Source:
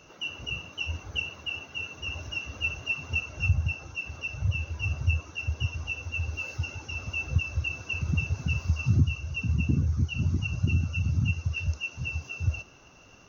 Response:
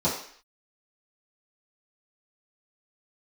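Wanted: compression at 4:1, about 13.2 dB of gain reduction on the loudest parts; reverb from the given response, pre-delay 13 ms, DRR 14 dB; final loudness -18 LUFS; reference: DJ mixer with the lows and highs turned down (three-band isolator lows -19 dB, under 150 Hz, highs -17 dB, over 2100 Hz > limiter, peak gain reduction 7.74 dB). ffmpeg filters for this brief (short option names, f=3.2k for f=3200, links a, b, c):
-filter_complex "[0:a]acompressor=threshold=-35dB:ratio=4,asplit=2[a][b];[1:a]atrim=start_sample=2205,adelay=13[c];[b][c]afir=irnorm=-1:irlink=0,volume=-26.5dB[d];[a][d]amix=inputs=2:normalize=0,acrossover=split=150 2100:gain=0.112 1 0.141[e][f][g];[e][f][g]amix=inputs=3:normalize=0,volume=30dB,alimiter=limit=-8.5dB:level=0:latency=1"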